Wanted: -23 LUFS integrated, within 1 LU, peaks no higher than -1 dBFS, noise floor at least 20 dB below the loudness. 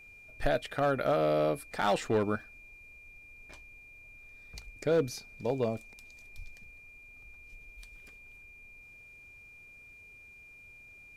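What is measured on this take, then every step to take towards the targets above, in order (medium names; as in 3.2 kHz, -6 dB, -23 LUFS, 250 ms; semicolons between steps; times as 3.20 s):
clipped samples 0.3%; clipping level -20.5 dBFS; steady tone 2.4 kHz; tone level -51 dBFS; loudness -31.0 LUFS; peak level -20.5 dBFS; loudness target -23.0 LUFS
-> clip repair -20.5 dBFS; band-stop 2.4 kHz, Q 30; trim +8 dB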